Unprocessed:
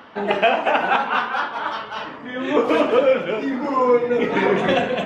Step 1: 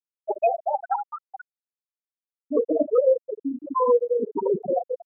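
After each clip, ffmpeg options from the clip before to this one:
-filter_complex "[0:a]afftfilt=real='re*gte(hypot(re,im),0.708)':imag='im*gte(hypot(re,im),0.708)':win_size=1024:overlap=0.75,acrossover=split=470|1400[s0][s1][s2];[s2]alimiter=level_in=2.37:limit=0.0631:level=0:latency=1:release=181,volume=0.422[s3];[s0][s1][s3]amix=inputs=3:normalize=0,volume=0.794"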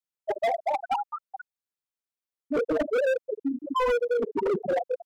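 -af "asoftclip=type=hard:threshold=0.0841"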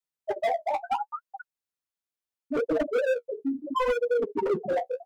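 -af "flanger=delay=6:depth=9.5:regen=-26:speed=0.73:shape=sinusoidal,volume=1.33"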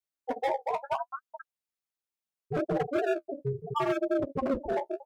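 -af "aeval=exprs='val(0)*sin(2*PI*140*n/s)':c=same"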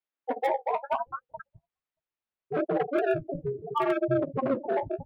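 -filter_complex "[0:a]acrossover=split=3600[s0][s1];[s1]acrusher=bits=4:dc=4:mix=0:aa=0.000001[s2];[s0][s2]amix=inputs=2:normalize=0,acrossover=split=170[s3][s4];[s3]adelay=630[s5];[s5][s4]amix=inputs=2:normalize=0,volume=1.33"

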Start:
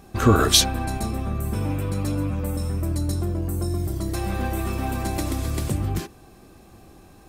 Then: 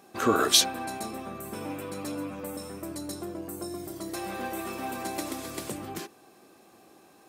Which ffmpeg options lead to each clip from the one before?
-af "highpass=300,volume=0.668"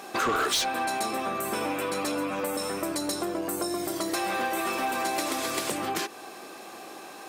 -filter_complex "[0:a]asplit=2[s0][s1];[s1]highpass=f=720:p=1,volume=14.1,asoftclip=type=tanh:threshold=0.473[s2];[s0][s2]amix=inputs=2:normalize=0,lowpass=f=6100:p=1,volume=0.501,acompressor=threshold=0.0398:ratio=3"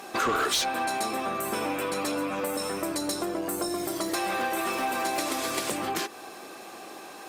-ar 48000 -c:a libopus -b:a 48k

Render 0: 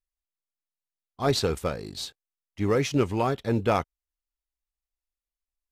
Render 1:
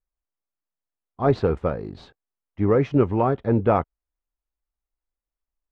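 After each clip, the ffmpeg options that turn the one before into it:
-af "lowpass=1300,volume=1.78"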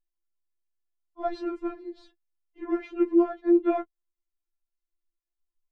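-af "lowshelf=f=360:t=q:w=3:g=6,afftfilt=real='re*4*eq(mod(b,16),0)':imag='im*4*eq(mod(b,16),0)':win_size=2048:overlap=0.75,volume=0.531"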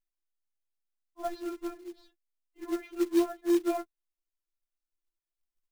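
-af "acrusher=bits=4:mode=log:mix=0:aa=0.000001,volume=0.562"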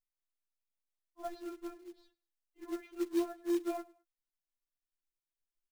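-af "aecho=1:1:104|208:0.0708|0.0248,volume=0.447"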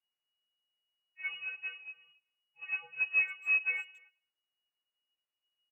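-filter_complex "[0:a]lowpass=f=2500:t=q:w=0.5098,lowpass=f=2500:t=q:w=0.6013,lowpass=f=2500:t=q:w=0.9,lowpass=f=2500:t=q:w=2.563,afreqshift=-2900,asplit=2[s0][s1];[s1]adelay=270,highpass=300,lowpass=3400,asoftclip=type=hard:threshold=0.0251,volume=0.0631[s2];[s0][s2]amix=inputs=2:normalize=0,volume=1.41"

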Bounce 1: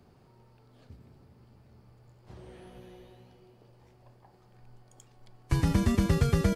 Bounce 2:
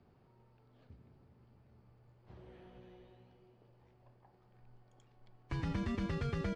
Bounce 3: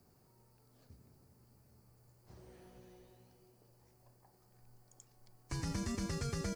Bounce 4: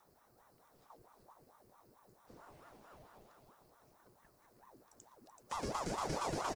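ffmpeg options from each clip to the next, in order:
-filter_complex "[0:a]lowpass=3500,acrossover=split=1100[s0][s1];[s0]alimiter=limit=0.075:level=0:latency=1[s2];[s2][s1]amix=inputs=2:normalize=0,volume=0.447"
-af "aexciter=amount=11.1:drive=3.8:freq=4900,volume=0.794"
-filter_complex "[0:a]asplit=2[s0][s1];[s1]aecho=0:1:381:0.531[s2];[s0][s2]amix=inputs=2:normalize=0,aeval=exprs='val(0)*sin(2*PI*650*n/s+650*0.65/4.5*sin(2*PI*4.5*n/s))':c=same,volume=1.19"

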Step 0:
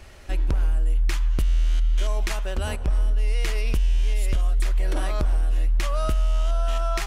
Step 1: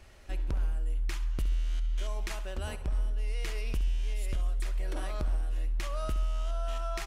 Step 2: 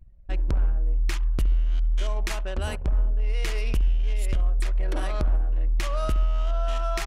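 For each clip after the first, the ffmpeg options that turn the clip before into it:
-af "aecho=1:1:67|134|201|268:0.2|0.0798|0.0319|0.0128,volume=0.355"
-af "anlmdn=0.0631,volume=2.37"

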